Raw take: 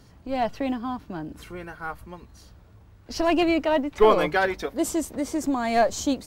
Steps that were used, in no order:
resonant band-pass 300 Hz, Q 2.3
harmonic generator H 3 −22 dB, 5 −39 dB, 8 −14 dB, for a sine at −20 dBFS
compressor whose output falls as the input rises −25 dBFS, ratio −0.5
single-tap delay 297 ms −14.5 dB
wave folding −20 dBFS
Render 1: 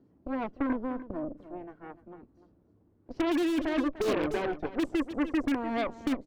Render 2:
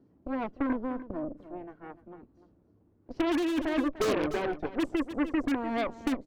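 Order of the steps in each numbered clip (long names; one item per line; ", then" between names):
resonant band-pass, then harmonic generator, then single-tap delay, then wave folding, then compressor whose output falls as the input rises
resonant band-pass, then wave folding, then harmonic generator, then single-tap delay, then compressor whose output falls as the input rises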